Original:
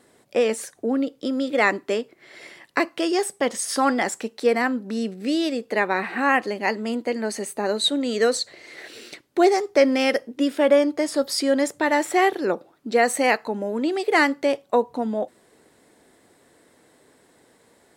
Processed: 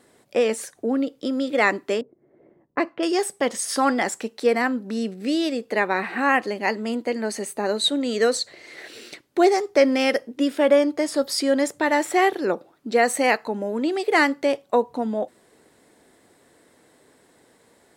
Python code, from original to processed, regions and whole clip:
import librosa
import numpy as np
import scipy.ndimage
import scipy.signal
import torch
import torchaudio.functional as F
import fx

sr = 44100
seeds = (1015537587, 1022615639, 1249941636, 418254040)

y = fx.chain(x, sr, fx.lowpass(hz=1800.0, slope=6),
    fx.env_lowpass(base_hz=330.0, full_db=-19.0), at=(2.01, 3.03))